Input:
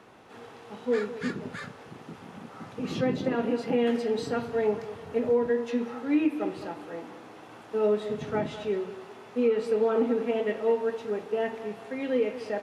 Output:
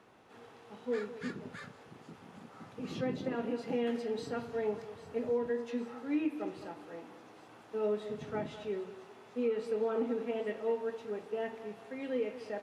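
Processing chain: feedback echo behind a high-pass 798 ms, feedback 74%, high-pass 5.2 kHz, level -11.5 dB; trim -8 dB

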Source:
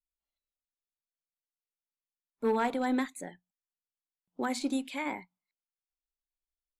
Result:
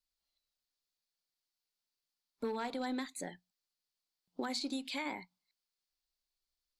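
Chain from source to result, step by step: peaking EQ 4.5 kHz +12.5 dB 0.69 oct; compression 4:1, threshold -38 dBFS, peak gain reduction 12.5 dB; trim +1.5 dB

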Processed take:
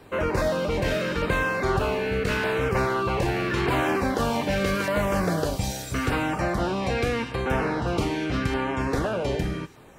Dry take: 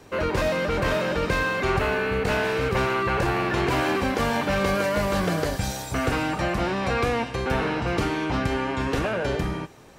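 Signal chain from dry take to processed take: LFO notch saw down 0.82 Hz 590–6600 Hz

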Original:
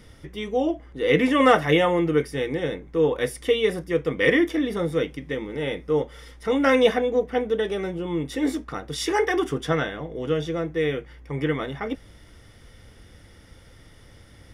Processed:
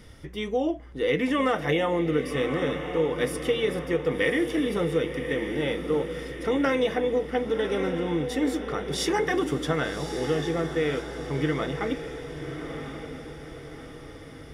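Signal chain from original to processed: compression, threshold -21 dBFS, peak gain reduction 10 dB; on a send: echo that smears into a reverb 1134 ms, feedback 47%, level -8 dB

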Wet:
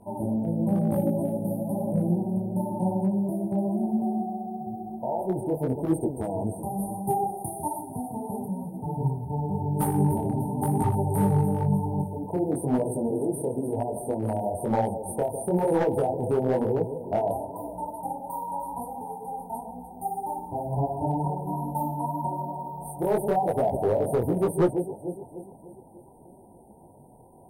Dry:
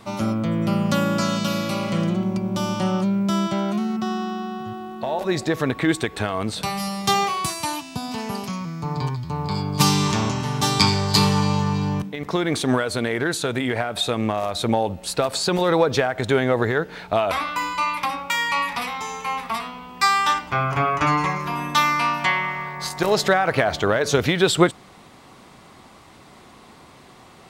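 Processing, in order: on a send: echo whose repeats swap between lows and highs 149 ms, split 810 Hz, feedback 72%, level -8.5 dB; on the sum: FFT band-reject 990–8500 Hz; overload inside the chain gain 13.5 dB; detune thickener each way 35 cents

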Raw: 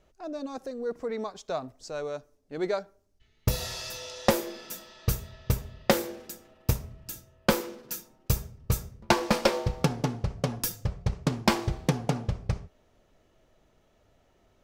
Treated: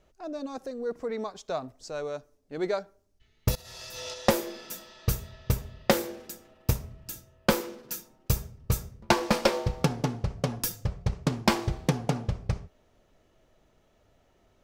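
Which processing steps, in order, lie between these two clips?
3.55–4.14 s: compressor with a negative ratio -41 dBFS, ratio -0.5

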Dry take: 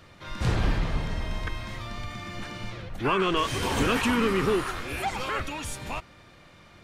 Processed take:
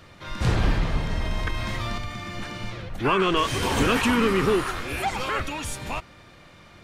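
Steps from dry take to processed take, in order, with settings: 1.10–1.98 s: level flattener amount 50%; trim +3 dB

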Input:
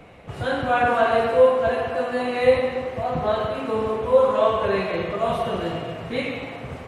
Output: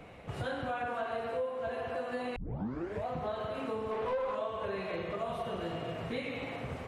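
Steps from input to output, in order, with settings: 2.36 s: tape start 0.70 s; compression 6:1, threshold -29 dBFS, peak gain reduction 17 dB; 3.91–4.35 s: overdrive pedal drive 15 dB, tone 2.8 kHz, clips at -22 dBFS; trim -4.5 dB

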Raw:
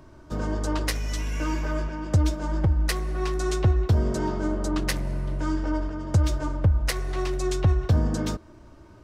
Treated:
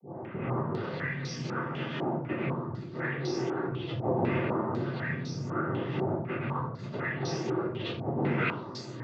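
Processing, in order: delay that grows with frequency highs late, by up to 617 ms; bass shelf 200 Hz +3 dB; hum notches 60/120/180/240/300 Hz; compressor with a negative ratio -27 dBFS, ratio -0.5; saturation -34.5 dBFS, distortion -7 dB; noise-vocoded speech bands 16; distance through air 170 m; simulated room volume 49 m³, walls mixed, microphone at 1.6 m; step-sequenced low-pass 4 Hz 780–5600 Hz

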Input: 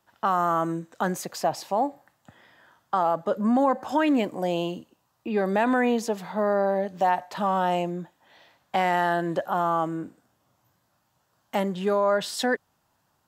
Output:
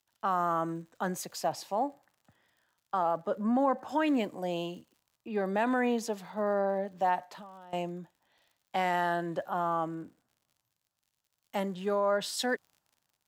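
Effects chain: 7.23–7.73 s: compression 5:1, threshold -37 dBFS, peak gain reduction 15.5 dB; crackle 78 per s -42 dBFS; three bands expanded up and down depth 40%; trim -6 dB

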